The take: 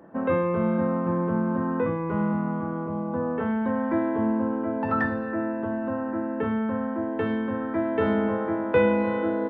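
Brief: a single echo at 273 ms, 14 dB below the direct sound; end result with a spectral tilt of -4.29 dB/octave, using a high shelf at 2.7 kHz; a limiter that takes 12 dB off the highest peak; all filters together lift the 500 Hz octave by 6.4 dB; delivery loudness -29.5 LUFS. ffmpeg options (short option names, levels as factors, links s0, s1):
-af "equalizer=f=500:t=o:g=7,highshelf=f=2700:g=3.5,alimiter=limit=0.168:level=0:latency=1,aecho=1:1:273:0.2,volume=0.531"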